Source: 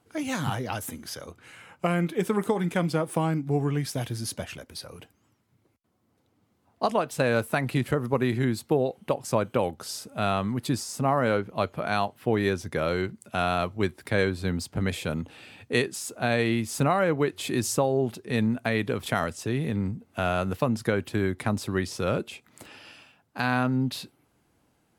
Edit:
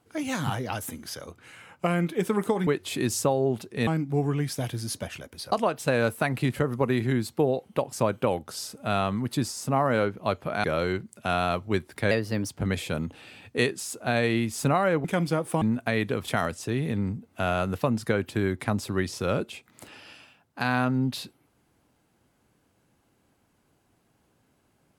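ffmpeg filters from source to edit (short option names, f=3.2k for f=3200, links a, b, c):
-filter_complex "[0:a]asplit=9[a][b][c][d][e][f][g][h][i];[a]atrim=end=2.672[j];[b]atrim=start=17.198:end=18.402[k];[c]atrim=start=3.238:end=4.892[l];[d]atrim=start=6.838:end=11.962[m];[e]atrim=start=12.728:end=14.204[n];[f]atrim=start=14.2:end=14.65,asetpts=PTS-STARTPTS,asetrate=51597,aresample=44100[o];[g]atrim=start=14.646:end=17.202[p];[h]atrim=start=2.668:end=3.242[q];[i]atrim=start=18.398[r];[j][k]acrossfade=d=0.004:c1=hsin:c2=hsin[s];[s][l]acrossfade=d=0.004:c1=hsin:c2=hsin[t];[t][m]acrossfade=d=0.004:c1=hsin:c2=hsin[u];[u][n]acrossfade=d=0.004:c1=hsin:c2=hsin[v];[v][o]acrossfade=d=0.004:c1=hsin:c2=hsin[w];[w][p]acrossfade=d=0.004:c1=hsin:c2=hsin[x];[x][q]acrossfade=d=0.004:c1=hsin:c2=hsin[y];[y][r]acrossfade=d=0.004:c1=hsin:c2=hsin"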